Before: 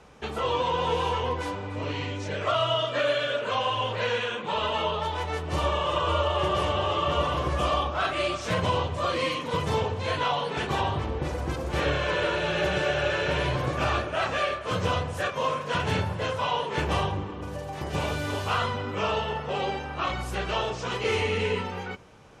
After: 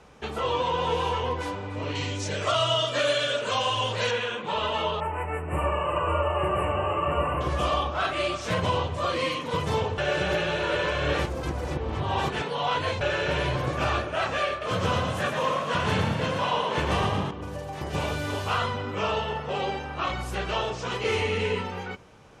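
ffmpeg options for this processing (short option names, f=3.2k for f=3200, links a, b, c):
-filter_complex "[0:a]asettb=1/sr,asplit=3[a][b][c];[a]atrim=end=1.954[d];[b]atrim=start=1.95:end=4.11,asetpts=PTS-STARTPTS,afade=t=in:d=0.004:c=qsin,afade=t=out:st=2.156:d=0.004:c=qsin,bass=f=250:g=2,treble=f=4k:g=13[e];[c]atrim=start=4.106[f];[d][e]acrossfade=d=0.004:c1=hsin:c2=qsin[g];[g][f]acrossfade=d=0.004:c1=qsin:c2=hsin,asettb=1/sr,asplit=3[h][i][j];[h]atrim=end=5.004[k];[i]atrim=start=5:end=7.41,asetpts=PTS-STARTPTS,afade=t=in:d=0.004:c=qsin,afade=t=out:st=2.406:d=0.004:c=qsin,asuperstop=centerf=4700:order=20:qfactor=1[l];[j]atrim=start=7.406[m];[k][l]acrossfade=d=0.004:c1=hsin:c2=qsin[n];[n][m]acrossfade=d=0.004:c1=qsin:c2=hsin,asettb=1/sr,asplit=3[o][p][q];[o]atrim=end=14.504[r];[p]atrim=start=14.5:end=17.31,asetpts=PTS-STARTPTS,afade=t=in:d=0.004:c=qsin,afade=t=out:st=2.806:d=0.004:c=qsin,asplit=9[s][t][u][v][w][x][y][z][aa];[t]adelay=115,afreqshift=40,volume=-5dB[ab];[u]adelay=230,afreqshift=80,volume=-9.9dB[ac];[v]adelay=345,afreqshift=120,volume=-14.8dB[ad];[w]adelay=460,afreqshift=160,volume=-19.6dB[ae];[x]adelay=575,afreqshift=200,volume=-24.5dB[af];[y]adelay=690,afreqshift=240,volume=-29.4dB[ag];[z]adelay=805,afreqshift=280,volume=-34.3dB[ah];[aa]adelay=920,afreqshift=320,volume=-39.2dB[ai];[s][ab][ac][ad][ae][af][ag][ah][ai]amix=inputs=9:normalize=0,atrim=end_sample=123921[aj];[q]atrim=start=17.306[ak];[r][aj]acrossfade=d=0.004:c1=hsin:c2=qsin[al];[al][ak]acrossfade=d=0.004:c1=qsin:c2=hsin,asplit=3[am][an][ao];[am]atrim=end=9.982[ap];[an]atrim=start=9.978:end=13.012,asetpts=PTS-STARTPTS,areverse[aq];[ao]atrim=start=13.008[ar];[ap][aq]acrossfade=d=0.004:c1=hsin:c2=hsin[as];[as][ar]acrossfade=d=0.004:c1=hsin:c2=hsin"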